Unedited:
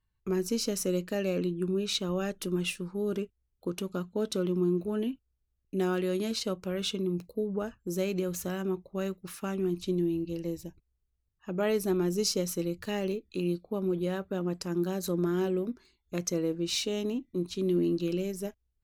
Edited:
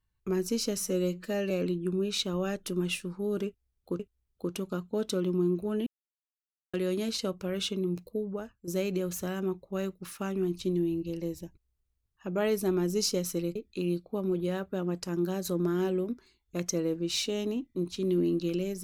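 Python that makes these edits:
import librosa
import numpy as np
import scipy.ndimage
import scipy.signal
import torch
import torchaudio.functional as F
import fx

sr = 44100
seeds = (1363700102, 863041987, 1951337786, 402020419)

y = fx.edit(x, sr, fx.stretch_span(start_s=0.77, length_s=0.49, factor=1.5),
    fx.repeat(start_s=3.22, length_s=0.53, count=2),
    fx.silence(start_s=5.09, length_s=0.87),
    fx.fade_out_to(start_s=7.29, length_s=0.61, floor_db=-10.5),
    fx.cut(start_s=12.78, length_s=0.36), tone=tone)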